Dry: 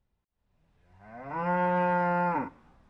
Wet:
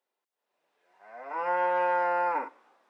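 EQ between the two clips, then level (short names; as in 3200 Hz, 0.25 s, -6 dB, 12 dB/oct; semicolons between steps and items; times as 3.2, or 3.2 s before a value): HPF 390 Hz 24 dB/oct; +1.0 dB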